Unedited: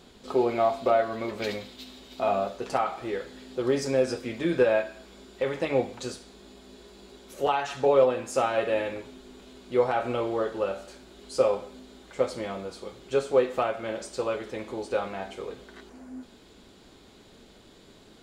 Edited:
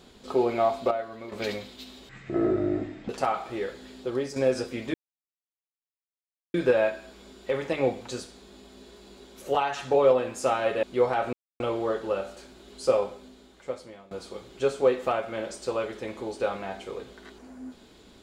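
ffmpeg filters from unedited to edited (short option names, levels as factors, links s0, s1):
-filter_complex "[0:a]asplit=10[s0][s1][s2][s3][s4][s5][s6][s7][s8][s9];[s0]atrim=end=0.912[s10];[s1]atrim=start=0.908:end=1.322,asetpts=PTS-STARTPTS,volume=0.376[s11];[s2]atrim=start=1.318:end=2.094[s12];[s3]atrim=start=2.09:end=2.61,asetpts=PTS-STARTPTS,asetrate=22932,aresample=44100[s13];[s4]atrim=start=2.606:end=3.88,asetpts=PTS-STARTPTS,afade=t=out:st=0.874:d=0.4:silence=0.354813[s14];[s5]atrim=start=3.88:end=4.46,asetpts=PTS-STARTPTS,afade=t=in:d=0.004:c=hsin:silence=0.354813,afade=t=out:st=0.576:d=0.004:c=hsin,apad=pad_dur=1.6[s15];[s6]atrim=start=4.46:end=8.752,asetpts=PTS-STARTPTS,afade=t=in:d=0.004:c=hsin[s16];[s7]atrim=start=9.608:end=10.11,asetpts=PTS-STARTPTS,afade=t=out:st=0.498:d=0.004:c=hsin,apad=pad_dur=0.27[s17];[s8]atrim=start=10.11:end=12.62,asetpts=PTS-STARTPTS,afade=t=in:d=0.004:c=hsin,afade=t=out:st=1.35:d=1.16:silence=0.0944061[s18];[s9]atrim=start=12.62,asetpts=PTS-STARTPTS,afade=t=in:d=0.004:c=hsin:silence=0.0944061[s19];[s10][s11]acrossfade=d=0.004:c1=hsin:c2=hsin[s20];[s20][s12]acrossfade=d=0.004:c1=hsin:c2=hsin[s21];[s21][s13]acrossfade=d=0.004:c1=hsin:c2=hsin[s22];[s14][s15][s16]concat=n=3:v=0:a=1[s23];[s22][s23]acrossfade=d=0.004:c1=hsin:c2=hsin[s24];[s17][s18][s19]concat=n=3:v=0:a=1[s25];[s24][s25]acrossfade=d=0.004:c1=hsin:c2=hsin"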